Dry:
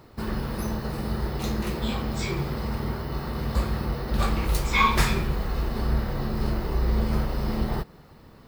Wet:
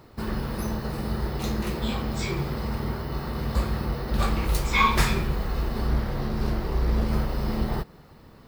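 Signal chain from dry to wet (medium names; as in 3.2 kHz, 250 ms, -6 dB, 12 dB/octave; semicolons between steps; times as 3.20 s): 5.88–7.08 s: loudspeaker Doppler distortion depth 0.45 ms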